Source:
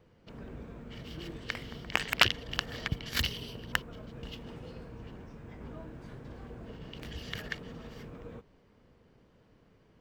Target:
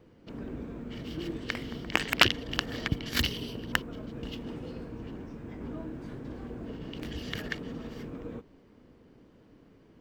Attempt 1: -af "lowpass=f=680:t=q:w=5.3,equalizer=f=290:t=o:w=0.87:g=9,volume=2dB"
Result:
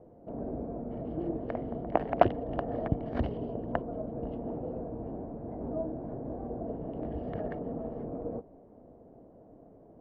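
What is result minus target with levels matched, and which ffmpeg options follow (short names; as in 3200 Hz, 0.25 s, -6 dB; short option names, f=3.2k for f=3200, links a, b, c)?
500 Hz band +9.5 dB
-af "equalizer=f=290:t=o:w=0.87:g=9,volume=2dB"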